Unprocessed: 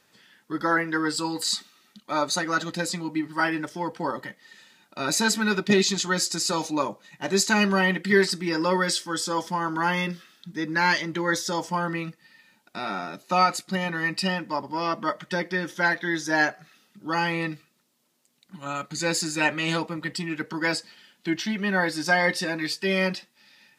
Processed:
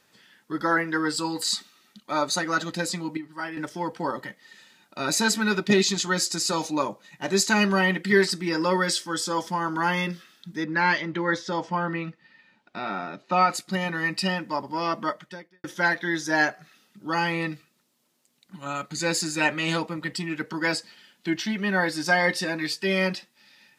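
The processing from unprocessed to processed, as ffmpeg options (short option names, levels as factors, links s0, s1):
-filter_complex "[0:a]asettb=1/sr,asplit=3[s0][s1][s2];[s0]atrim=end=10.644[s3];[s1]atrim=start=10.64:end=13.5,asetpts=PTS-STARTPTS,afade=t=in:d=0.004:c=qsin,afade=t=out:st=2.856:d=0.004:c=qsin,lowpass=3400[s4];[s2]atrim=start=13.496[s5];[s3][s4]acrossfade=d=0.004:c1=hsin:c2=qsin[s6];[s6][s5]acrossfade=d=0.004:c1=qsin:c2=hsin,asplit=4[s7][s8][s9][s10];[s7]atrim=end=3.172[s11];[s8]atrim=start=3.168:end=3.572,asetpts=PTS-STARTPTS,volume=0.355[s12];[s9]atrim=start=3.568:end=15.64,asetpts=PTS-STARTPTS,afade=t=out:st=11.482:d=0.59:c=qua[s13];[s10]atrim=start=15.64,asetpts=PTS-STARTPTS,afade=t=in:d=0.004:c=hsin[s14];[s11][s12]acrossfade=d=0.004:c1=hsin:c2=hsin[s15];[s13][s14]concat=n=2:v=0:a=1[s16];[s15][s16]acrossfade=d=0.004:c1=hsin:c2=hsin"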